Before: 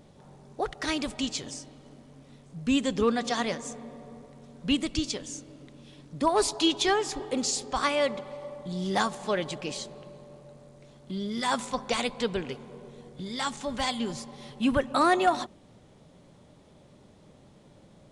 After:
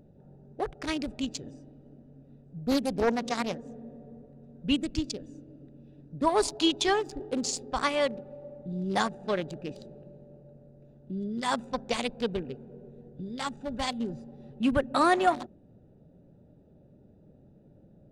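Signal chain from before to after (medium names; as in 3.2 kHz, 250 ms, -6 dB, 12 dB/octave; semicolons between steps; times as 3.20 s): local Wiener filter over 41 samples; 2.59–3.74 s: loudspeaker Doppler distortion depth 0.57 ms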